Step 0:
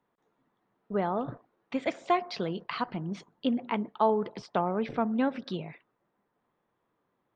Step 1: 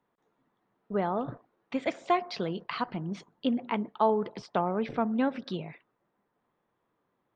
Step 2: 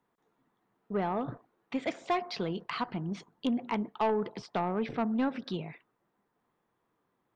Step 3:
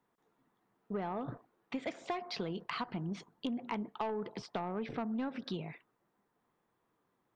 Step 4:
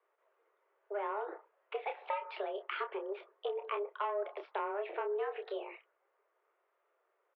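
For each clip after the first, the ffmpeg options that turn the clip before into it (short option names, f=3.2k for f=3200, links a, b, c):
-af anull
-af "equalizer=f=570:w=5.9:g=-4,asoftclip=type=tanh:threshold=-21.5dB"
-af "acompressor=threshold=-33dB:ratio=6,volume=-1dB"
-filter_complex "[0:a]highpass=f=170:t=q:w=0.5412,highpass=f=170:t=q:w=1.307,lowpass=f=2.9k:t=q:w=0.5176,lowpass=f=2.9k:t=q:w=0.7071,lowpass=f=2.9k:t=q:w=1.932,afreqshift=200,asplit=2[a][b];[b]adelay=29,volume=-7dB[c];[a][c]amix=inputs=2:normalize=0"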